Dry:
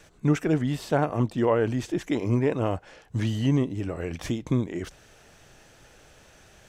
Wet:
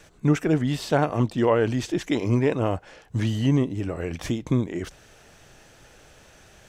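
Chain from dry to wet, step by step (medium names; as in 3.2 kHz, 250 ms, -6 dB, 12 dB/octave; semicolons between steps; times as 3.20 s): 0.65–2.55 s: dynamic bell 4.2 kHz, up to +5 dB, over -47 dBFS, Q 0.77; trim +2 dB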